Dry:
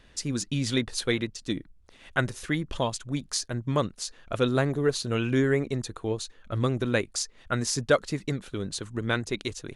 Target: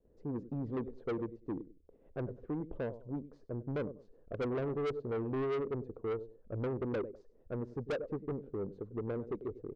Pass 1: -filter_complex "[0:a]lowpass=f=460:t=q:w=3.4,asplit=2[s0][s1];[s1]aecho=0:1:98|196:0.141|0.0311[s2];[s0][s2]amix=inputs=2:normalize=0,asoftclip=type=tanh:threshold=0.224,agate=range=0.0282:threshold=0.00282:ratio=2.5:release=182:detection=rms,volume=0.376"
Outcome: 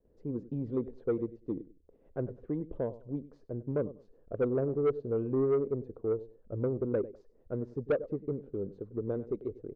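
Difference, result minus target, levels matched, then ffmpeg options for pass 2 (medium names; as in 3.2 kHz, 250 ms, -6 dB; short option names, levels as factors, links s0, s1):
saturation: distortion -8 dB
-filter_complex "[0:a]lowpass=f=460:t=q:w=3.4,asplit=2[s0][s1];[s1]aecho=0:1:98|196:0.141|0.0311[s2];[s0][s2]amix=inputs=2:normalize=0,asoftclip=type=tanh:threshold=0.0708,agate=range=0.0282:threshold=0.00282:ratio=2.5:release=182:detection=rms,volume=0.376"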